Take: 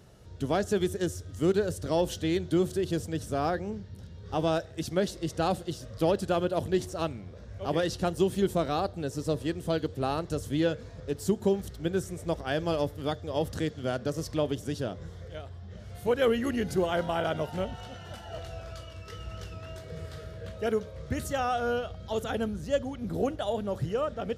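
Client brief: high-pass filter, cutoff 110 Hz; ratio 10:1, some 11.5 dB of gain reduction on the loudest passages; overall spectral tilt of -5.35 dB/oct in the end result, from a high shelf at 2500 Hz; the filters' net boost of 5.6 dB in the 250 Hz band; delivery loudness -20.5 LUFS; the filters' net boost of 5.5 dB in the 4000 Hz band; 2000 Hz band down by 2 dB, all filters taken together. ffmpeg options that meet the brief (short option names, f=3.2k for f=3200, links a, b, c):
-af "highpass=110,equalizer=f=250:t=o:g=8.5,equalizer=f=2k:t=o:g=-6.5,highshelf=f=2.5k:g=4.5,equalizer=f=4k:t=o:g=5.5,acompressor=threshold=-28dB:ratio=10,volume=14dB"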